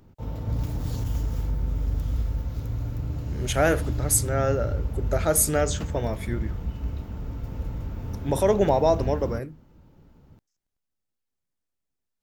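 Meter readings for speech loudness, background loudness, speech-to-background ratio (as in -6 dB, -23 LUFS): -24.5 LUFS, -31.0 LUFS, 6.5 dB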